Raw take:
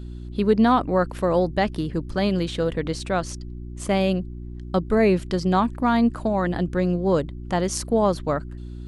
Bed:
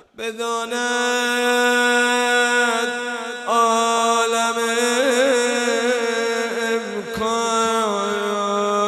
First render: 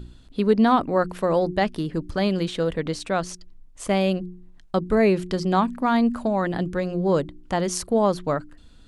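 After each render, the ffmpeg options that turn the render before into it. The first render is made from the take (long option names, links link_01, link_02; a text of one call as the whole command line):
ffmpeg -i in.wav -af "bandreject=frequency=60:width_type=h:width=4,bandreject=frequency=120:width_type=h:width=4,bandreject=frequency=180:width_type=h:width=4,bandreject=frequency=240:width_type=h:width=4,bandreject=frequency=300:width_type=h:width=4,bandreject=frequency=360:width_type=h:width=4" out.wav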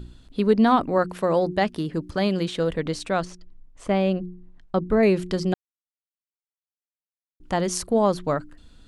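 ffmpeg -i in.wav -filter_complex "[0:a]asettb=1/sr,asplit=3[link_01][link_02][link_03];[link_01]atrim=end=0.984[link_04];[link_02]atrim=start=0.98:end=2.59,asetpts=PTS-STARTPTS,afade=type=in:duration=0.004:curve=qsin,afade=type=out:start_time=1.606:duration=0.004:curve=qsin,highpass=frequency=73:poles=1[link_05];[link_03]atrim=start=2.586[link_06];[link_04][link_05]acrossfade=duration=0.004:curve1=hsin:curve2=qsin[link_07];[link_07][link_06]acrossfade=duration=0.004:curve1=qsin:curve2=hsin,asettb=1/sr,asplit=3[link_08][link_09][link_10];[link_08]atrim=end=3.254[link_11];[link_09]atrim=start=3.25:end=5.03,asetpts=PTS-STARTPTS,afade=type=in:duration=0.004:curve=qsin,afade=type=out:start_time=1.776:duration=0.004:curve=qsin,aemphasis=mode=reproduction:type=75kf[link_12];[link_10]atrim=start=5.026[link_13];[link_11][link_12]acrossfade=duration=0.004:curve1=hsin:curve2=qsin[link_14];[link_14][link_13]acrossfade=duration=0.004:curve1=qsin:curve2=hsin,asplit=3[link_15][link_16][link_17];[link_15]atrim=end=5.54,asetpts=PTS-STARTPTS,afade=type=out:start_time=5.536:duration=0.004:curve=hsin[link_18];[link_16]atrim=start=5.54:end=7.4,asetpts=PTS-STARTPTS,volume=0[link_19];[link_17]atrim=start=7.4,asetpts=PTS-STARTPTS,afade=type=in:duration=0.004:curve=hsin[link_20];[link_18][link_19][link_20]concat=n=3:v=0:a=1" out.wav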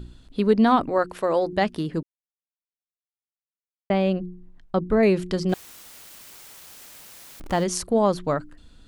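ffmpeg -i in.wav -filter_complex "[0:a]asettb=1/sr,asplit=3[link_01][link_02][link_03];[link_01]atrim=end=0.894[link_04];[link_02]atrim=start=0.89:end=1.53,asetpts=PTS-STARTPTS,afade=type=in:duration=0.004:curve=qsin,afade=type=out:start_time=0.636:duration=0.004:curve=qsin,equalizer=frequency=180:width_type=o:width=0.77:gain=-10[link_05];[link_03]atrim=start=1.526[link_06];[link_04][link_05]acrossfade=duration=0.004:curve1=hsin:curve2=qsin[link_07];[link_07][link_06]acrossfade=duration=0.004:curve1=qsin:curve2=hsin,asettb=1/sr,asplit=3[link_08][link_09][link_10];[link_08]atrim=end=5.494[link_11];[link_09]atrim=start=5.49:end=7.64,asetpts=PTS-STARTPTS,afade=type=in:duration=0.004:curve=qsin,afade=type=out:start_time=2.146:duration=0.004:curve=qsin,aeval=exprs='val(0)+0.5*0.0211*sgn(val(0))':channel_layout=same[link_12];[link_10]atrim=start=7.636[link_13];[link_11][link_12]acrossfade=duration=0.004:curve1=hsin:curve2=qsin[link_14];[link_14][link_13]acrossfade=duration=0.004:curve1=qsin:curve2=hsin,asplit=3[link_15][link_16][link_17];[link_15]atrim=end=2.03,asetpts=PTS-STARTPTS,afade=type=out:start_time=2.026:duration=0.004:curve=hsin[link_18];[link_16]atrim=start=2.03:end=3.9,asetpts=PTS-STARTPTS,volume=0[link_19];[link_17]atrim=start=3.9,asetpts=PTS-STARTPTS,afade=type=in:duration=0.004:curve=hsin[link_20];[link_18][link_19][link_20]concat=n=3:v=0:a=1" out.wav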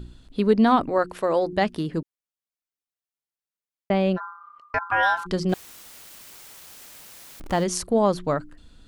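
ffmpeg -i in.wav -filter_complex "[0:a]asplit=3[link_01][link_02][link_03];[link_01]afade=type=out:start_time=4.16:duration=0.02[link_04];[link_02]aeval=exprs='val(0)*sin(2*PI*1200*n/s)':channel_layout=same,afade=type=in:start_time=4.16:duration=0.02,afade=type=out:start_time=5.25:duration=0.02[link_05];[link_03]afade=type=in:start_time=5.25:duration=0.02[link_06];[link_04][link_05][link_06]amix=inputs=3:normalize=0" out.wav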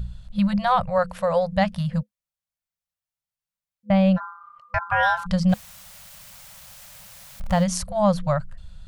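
ffmpeg -i in.wav -af "afftfilt=real='re*(1-between(b*sr/4096,210,500))':imag='im*(1-between(b*sr/4096,210,500))':win_size=4096:overlap=0.75,lowshelf=frequency=240:gain=10.5" out.wav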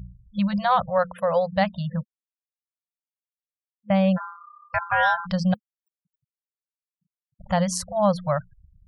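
ffmpeg -i in.wav -af "highpass=frequency=170:poles=1,afftfilt=real='re*gte(hypot(re,im),0.0126)':imag='im*gte(hypot(re,im),0.0126)':win_size=1024:overlap=0.75" out.wav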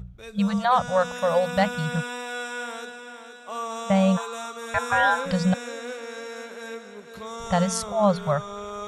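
ffmpeg -i in.wav -i bed.wav -filter_complex "[1:a]volume=-15.5dB[link_01];[0:a][link_01]amix=inputs=2:normalize=0" out.wav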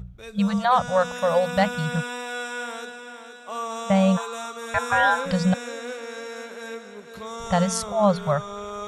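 ffmpeg -i in.wav -af "volume=1dB" out.wav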